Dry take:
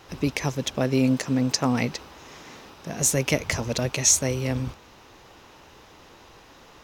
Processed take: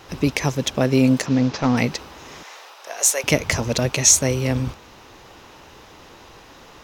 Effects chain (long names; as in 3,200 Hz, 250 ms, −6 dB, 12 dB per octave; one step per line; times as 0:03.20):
0:01.26–0:01.77: variable-slope delta modulation 32 kbit/s
0:02.43–0:03.24: high-pass filter 550 Hz 24 dB per octave
level +5 dB